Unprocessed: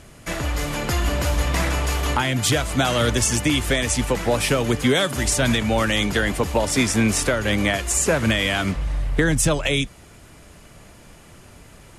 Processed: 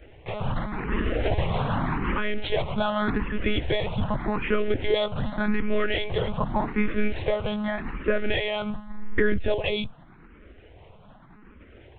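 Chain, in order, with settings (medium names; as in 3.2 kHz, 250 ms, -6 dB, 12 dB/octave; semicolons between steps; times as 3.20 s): treble shelf 2.9 kHz -11.5 dB; monotone LPC vocoder at 8 kHz 210 Hz; barber-pole phaser +0.85 Hz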